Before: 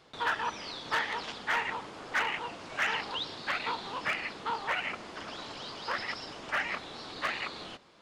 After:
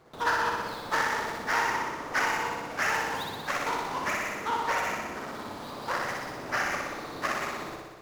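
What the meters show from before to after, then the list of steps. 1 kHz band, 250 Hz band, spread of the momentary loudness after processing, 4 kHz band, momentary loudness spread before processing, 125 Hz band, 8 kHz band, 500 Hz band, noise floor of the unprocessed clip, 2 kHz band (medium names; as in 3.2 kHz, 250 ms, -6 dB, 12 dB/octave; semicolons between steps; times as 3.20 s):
+5.5 dB, +6.5 dB, 9 LU, -1.5 dB, 10 LU, +7.0 dB, +10.0 dB, +6.5 dB, -46 dBFS, +3.0 dB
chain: median filter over 15 samples; flutter echo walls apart 10.5 m, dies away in 1.3 s; trim +3.5 dB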